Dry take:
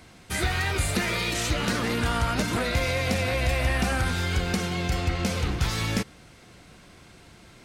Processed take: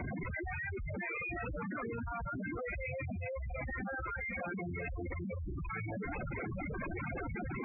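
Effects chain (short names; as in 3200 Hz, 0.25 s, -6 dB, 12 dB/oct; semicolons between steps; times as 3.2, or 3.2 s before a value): infinite clipping; reverb removal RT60 1.2 s; spectral gate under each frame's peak -15 dB strong; Chebyshev low-pass 2600 Hz, order 8; reverb removal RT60 1.7 s; 3.95–4.46 HPF 310 Hz -> 650 Hz 24 dB/oct; diffused feedback echo 0.553 s, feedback 60%, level -14 dB; limiter -33 dBFS, peak gain reduction 9.5 dB; soft clip -37.5 dBFS, distortion -16 dB; spectral gate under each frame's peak -10 dB strong; fast leveller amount 100%; gain +1 dB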